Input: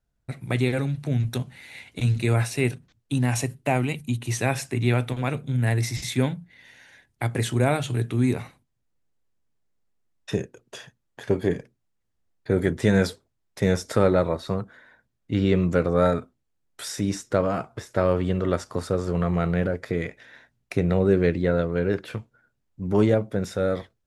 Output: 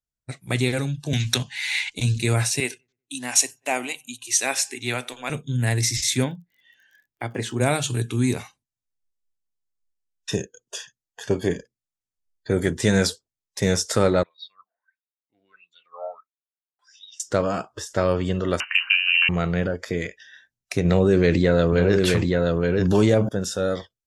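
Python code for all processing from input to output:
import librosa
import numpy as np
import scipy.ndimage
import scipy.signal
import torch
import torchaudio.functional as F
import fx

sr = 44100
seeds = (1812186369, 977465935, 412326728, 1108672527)

y = fx.chain(x, sr, fx.peak_eq(hz=2800.0, db=10.5, octaves=2.8),
    fx.band_squash(depth_pct=70), at=(1.13, 1.9))
y = fx.chain(y, sr, fx.low_shelf(hz=410.0, db=-10.5),
    fx.echo_filtered(ms=95, feedback_pct=53, hz=2200.0, wet_db=-20),
    fx.band_widen(depth_pct=40), at=(2.6, 5.3))
y = fx.lowpass(y, sr, hz=1600.0, slope=6, at=(6.23, 7.6), fade=0.02)
y = fx.peak_eq(y, sr, hz=77.0, db=-15.0, octaves=0.85, at=(6.23, 7.6), fade=0.02)
y = fx.dmg_crackle(y, sr, seeds[0], per_s=31.0, level_db=-45.0, at=(6.23, 7.6), fade=0.02)
y = fx.chain(y, sr, fx.peak_eq(hz=77.0, db=-12.5, octaves=0.22),
    fx.wah_lfo(hz=1.5, low_hz=680.0, high_hz=3900.0, q=12.0), at=(14.23, 17.2))
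y = fx.chain(y, sr, fx.freq_invert(carrier_hz=2900),
    fx.band_squash(depth_pct=70), at=(18.6, 19.29))
y = fx.chain(y, sr, fx.notch(hz=1400.0, q=25.0),
    fx.echo_single(ms=874, db=-9.5),
    fx.env_flatten(amount_pct=70), at=(20.85, 23.29))
y = fx.noise_reduce_blind(y, sr, reduce_db=18)
y = fx.peak_eq(y, sr, hz=6700.0, db=12.5, octaves=1.8)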